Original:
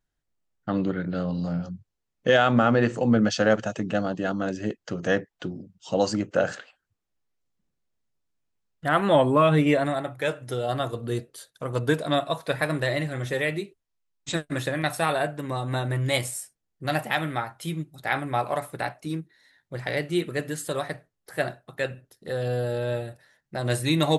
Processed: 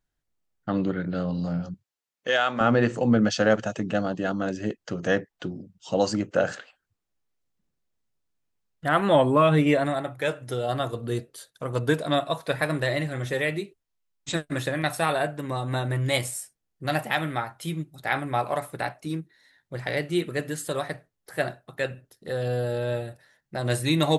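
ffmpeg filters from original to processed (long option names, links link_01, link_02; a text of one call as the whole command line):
ffmpeg -i in.wav -filter_complex "[0:a]asettb=1/sr,asplit=3[link_01][link_02][link_03];[link_01]atrim=end=1.744[link_04];[link_02]atrim=start=1.74:end=2.61,asetpts=PTS-STARTPTS,afade=type=in:duration=0.004:curve=qsin,afade=type=out:start_time=0.866:duration=0.004:curve=qsin,highpass=frequency=960:poles=1[link_05];[link_03]atrim=start=2.606[link_06];[link_04][link_05]acrossfade=duration=0.004:curve1=hsin:curve2=qsin[link_07];[link_07][link_06]acrossfade=duration=0.004:curve1=qsin:curve2=hsin" out.wav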